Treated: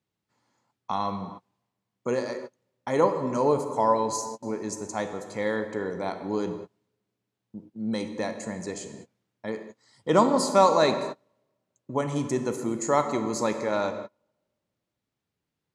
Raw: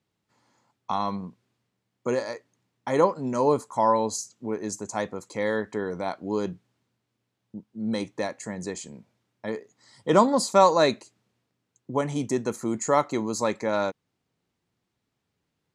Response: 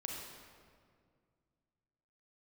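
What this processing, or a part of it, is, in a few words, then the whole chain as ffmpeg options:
keyed gated reverb: -filter_complex "[0:a]asplit=3[a][b][c];[1:a]atrim=start_sample=2205[d];[b][d]afir=irnorm=-1:irlink=0[e];[c]apad=whole_len=694554[f];[e][f]sidechaingate=range=-33dB:threshold=-47dB:ratio=16:detection=peak,volume=-1dB[g];[a][g]amix=inputs=2:normalize=0,volume=-5.5dB"

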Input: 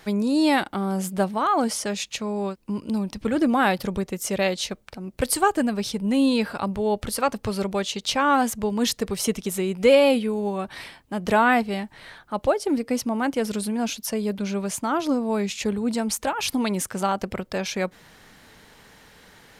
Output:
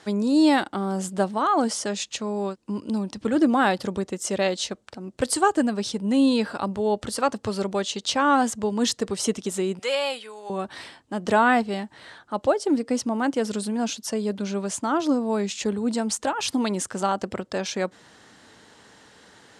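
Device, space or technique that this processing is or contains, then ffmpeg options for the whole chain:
car door speaker: -filter_complex "[0:a]asettb=1/sr,asplit=3[a][b][c];[a]atrim=end=9.794[d];[b]atrim=start=9.79:end=10.5,asetpts=PTS-STARTPTS,afade=t=in:d=0.004:c=qsin,afade=t=out:st=0.706:d=0.004:c=qsin,highpass=980[e];[c]atrim=start=10.496[f];[d][e]acrossfade=d=0.004:c1=hsin:c2=qsin[g];[g][f]acrossfade=d=0.004:c1=qsin:c2=hsin,highpass=100,equalizer=f=160:t=q:w=4:g=-6,equalizer=f=310:t=q:w=4:g=3,equalizer=f=2.3k:t=q:w=4:g=-6,equalizer=f=7.6k:t=q:w=4:g=3,lowpass=f=9.2k:w=0.5412,lowpass=f=9.2k:w=1.3066"

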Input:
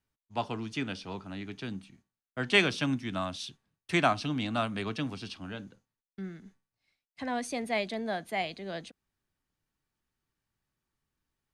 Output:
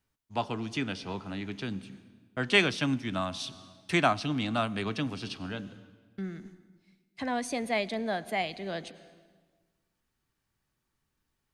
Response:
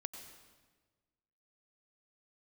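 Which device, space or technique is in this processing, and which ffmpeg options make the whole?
ducked reverb: -filter_complex "[0:a]asplit=3[a][b][c];[1:a]atrim=start_sample=2205[d];[b][d]afir=irnorm=-1:irlink=0[e];[c]apad=whole_len=508788[f];[e][f]sidechaincompress=threshold=-38dB:ratio=8:attack=16:release=459,volume=-1dB[g];[a][g]amix=inputs=2:normalize=0"

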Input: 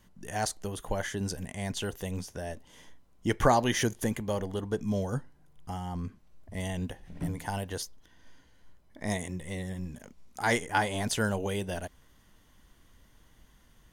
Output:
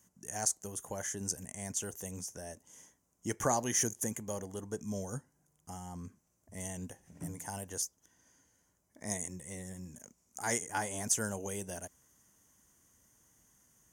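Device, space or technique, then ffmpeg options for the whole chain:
budget condenser microphone: -af "highpass=88,highshelf=f=5.1k:t=q:w=3:g=9,volume=-8dB"

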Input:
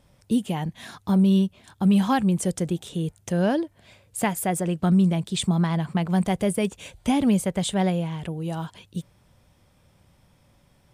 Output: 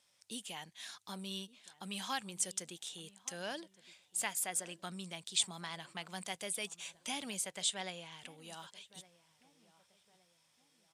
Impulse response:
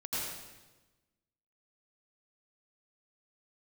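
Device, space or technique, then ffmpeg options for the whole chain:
piezo pickup straight into a mixer: -filter_complex "[0:a]asettb=1/sr,asplit=3[a][b][c];[a]atrim=end=7.624[d];[b]atrim=start=7.62:end=8.12,asetpts=PTS-STARTPTS,afade=t=in:d=0.004:c=qsin,afade=t=out:st=0.496:d=0.004:c=qsin,lowpass=9.2k[e];[c]atrim=start=8.116[f];[d][e]acrossfade=d=0.004:c1=hsin:c2=qsin[g];[g][f]acrossfade=d=0.004:c1=qsin:c2=hsin,lowpass=6.8k,aderivative,asplit=2[h][i];[i]adelay=1165,lowpass=f=1.6k:p=1,volume=-19dB,asplit=2[j][k];[k]adelay=1165,lowpass=f=1.6k:p=1,volume=0.44,asplit=2[l][m];[m]adelay=1165,lowpass=f=1.6k:p=1,volume=0.44[n];[h][j][l][n]amix=inputs=4:normalize=0,volume=2.5dB"

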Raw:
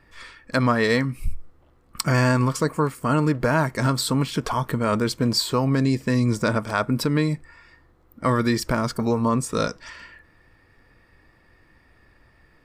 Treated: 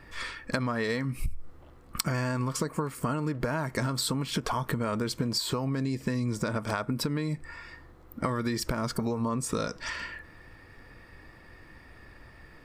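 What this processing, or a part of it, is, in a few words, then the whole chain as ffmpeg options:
serial compression, leveller first: -af "acompressor=threshold=-24dB:ratio=3,acompressor=threshold=-32dB:ratio=6,volume=5.5dB"

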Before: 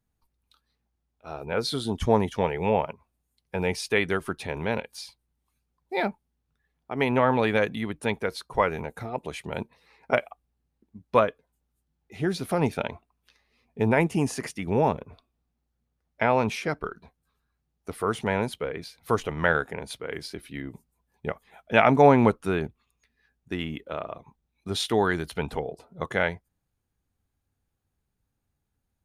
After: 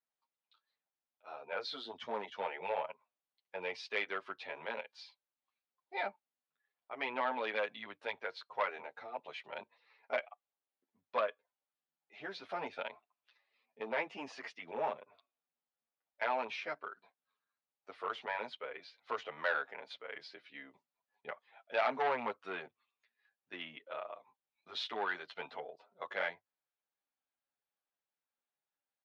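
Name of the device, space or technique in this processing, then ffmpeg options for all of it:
barber-pole flanger into a guitar amplifier: -filter_complex "[0:a]asplit=2[a][b];[b]adelay=8.7,afreqshift=-1.1[c];[a][c]amix=inputs=2:normalize=1,asoftclip=type=tanh:threshold=-18dB,highpass=760,highpass=88,equalizer=f=100:t=q:w=4:g=7,equalizer=f=150:t=q:w=4:g=4,equalizer=f=250:t=q:w=4:g=4,equalizer=f=580:t=q:w=4:g=5,lowpass=f=4.3k:w=0.5412,lowpass=f=4.3k:w=1.3066,volume=-4.5dB"

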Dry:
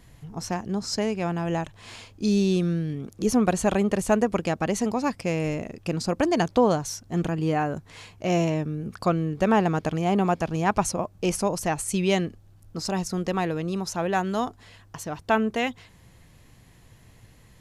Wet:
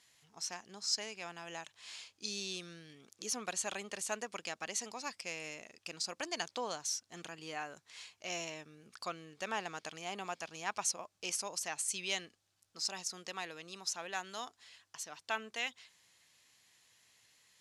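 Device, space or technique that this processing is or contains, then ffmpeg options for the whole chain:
piezo pickup straight into a mixer: -af "lowpass=5.9k,aderivative,volume=2.5dB"

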